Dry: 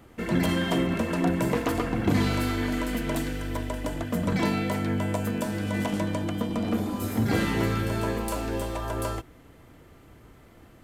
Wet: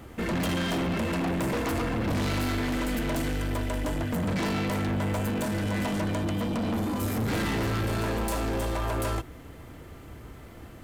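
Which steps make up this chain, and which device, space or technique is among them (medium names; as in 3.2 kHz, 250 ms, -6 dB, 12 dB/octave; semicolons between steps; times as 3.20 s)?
open-reel tape (saturation -32 dBFS, distortion -6 dB; peaking EQ 70 Hz +4.5 dB 0.84 oct; white noise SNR 45 dB); trim +6 dB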